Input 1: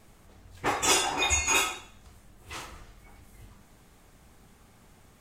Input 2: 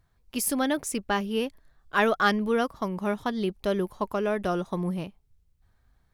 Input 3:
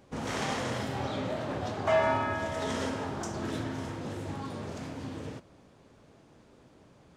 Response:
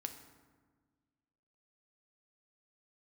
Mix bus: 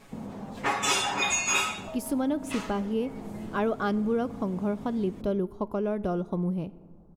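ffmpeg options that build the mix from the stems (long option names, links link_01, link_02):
-filter_complex "[0:a]aecho=1:1:7.2:0.89,asplit=2[link_01][link_02];[link_02]highpass=frequency=720:poles=1,volume=7dB,asoftclip=type=tanh:threshold=-7.5dB[link_03];[link_01][link_03]amix=inputs=2:normalize=0,lowpass=frequency=4300:poles=1,volume=-6dB,volume=1.5dB[link_04];[1:a]tiltshelf=frequency=940:gain=7.5,bandreject=frequency=1800:width=7.4,adelay=1600,volume=-3.5dB,asplit=2[link_05][link_06];[link_06]volume=-8dB[link_07];[2:a]acompressor=threshold=-34dB:ratio=6,lowpass=frequency=1000:width=0.5412,lowpass=frequency=1000:width=1.3066,equalizer=frequency=200:width=3.6:gain=13.5,volume=-4dB[link_08];[3:a]atrim=start_sample=2205[link_09];[link_07][link_09]afir=irnorm=-1:irlink=0[link_10];[link_04][link_05][link_08][link_10]amix=inputs=4:normalize=0,acompressor=threshold=-33dB:ratio=1.5"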